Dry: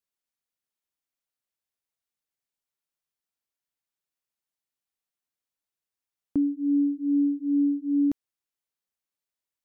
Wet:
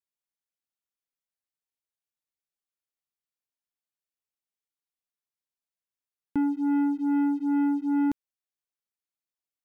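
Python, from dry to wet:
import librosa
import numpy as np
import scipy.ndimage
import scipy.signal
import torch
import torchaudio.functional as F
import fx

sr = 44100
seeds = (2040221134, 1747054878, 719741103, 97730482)

y = fx.leveller(x, sr, passes=2)
y = y * 10.0 ** (-3.0 / 20.0)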